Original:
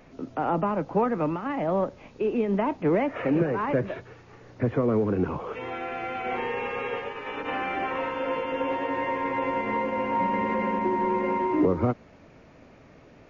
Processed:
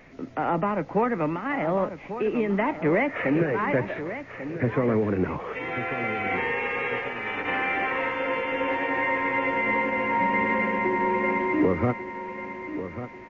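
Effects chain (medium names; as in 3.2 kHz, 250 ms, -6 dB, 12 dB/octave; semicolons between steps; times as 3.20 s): peaking EQ 2 kHz +10.5 dB 0.56 oct; on a send: feedback delay 1143 ms, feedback 37%, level -11 dB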